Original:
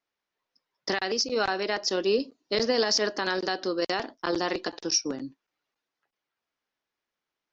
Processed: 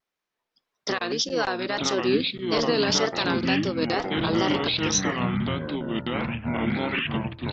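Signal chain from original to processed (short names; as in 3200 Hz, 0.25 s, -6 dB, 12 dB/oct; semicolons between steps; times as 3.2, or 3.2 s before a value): wow and flutter 130 cents; harmoniser -7 st -6 dB; echoes that change speed 0.551 s, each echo -6 st, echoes 3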